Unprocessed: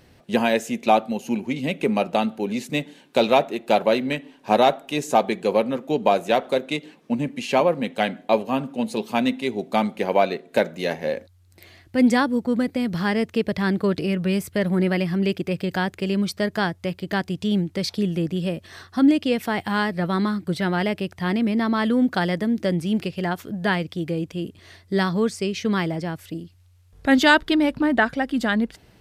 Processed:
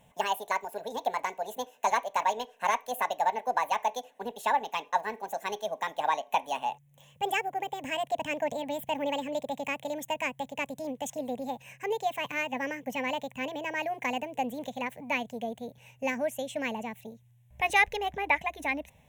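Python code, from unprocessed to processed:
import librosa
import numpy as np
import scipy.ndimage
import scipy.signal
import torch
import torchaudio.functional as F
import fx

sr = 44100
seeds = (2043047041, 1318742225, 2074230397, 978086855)

y = fx.speed_glide(x, sr, from_pct=174, to_pct=130)
y = fx.fixed_phaser(y, sr, hz=1300.0, stages=6)
y = F.gain(torch.from_numpy(y), -4.5).numpy()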